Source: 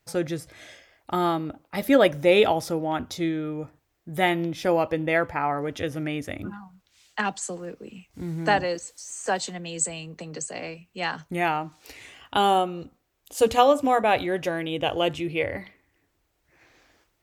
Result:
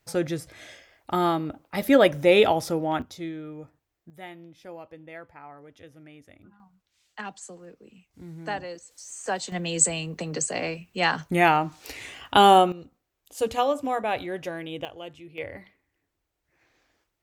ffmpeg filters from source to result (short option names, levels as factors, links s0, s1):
-af "asetnsamples=n=441:p=0,asendcmd='3.02 volume volume -8dB;4.1 volume volume -19.5dB;6.6 volume volume -10dB;8.91 volume volume -3dB;9.52 volume volume 5.5dB;12.72 volume volume -6dB;14.85 volume volume -16dB;15.38 volume volume -8.5dB',volume=1.06"